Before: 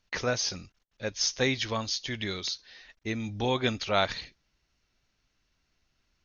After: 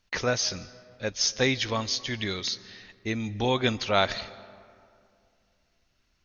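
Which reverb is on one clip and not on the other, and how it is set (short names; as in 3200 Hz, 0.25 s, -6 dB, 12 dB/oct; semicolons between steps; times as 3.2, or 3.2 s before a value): digital reverb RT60 2.4 s, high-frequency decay 0.5×, pre-delay 0.11 s, DRR 18.5 dB; gain +2.5 dB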